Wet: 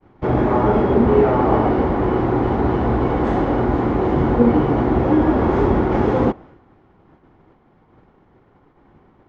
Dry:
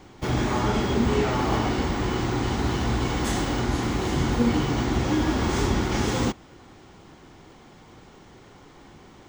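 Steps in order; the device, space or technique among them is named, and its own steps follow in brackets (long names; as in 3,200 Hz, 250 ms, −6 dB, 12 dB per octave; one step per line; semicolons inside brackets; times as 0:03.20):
dynamic equaliser 520 Hz, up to +8 dB, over −39 dBFS, Q 0.78
hearing-loss simulation (low-pass filter 1,500 Hz 12 dB per octave; downward expander −42 dBFS)
level +4 dB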